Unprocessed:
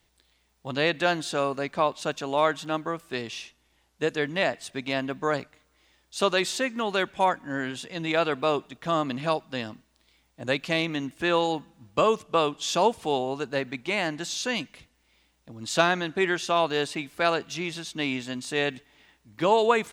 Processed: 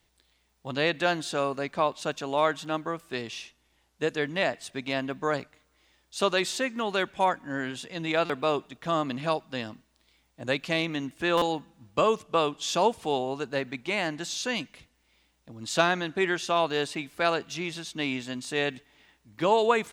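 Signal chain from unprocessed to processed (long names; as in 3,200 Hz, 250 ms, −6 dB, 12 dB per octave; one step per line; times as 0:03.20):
buffer that repeats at 0:08.25/0:11.37, samples 256, times 7
level −1.5 dB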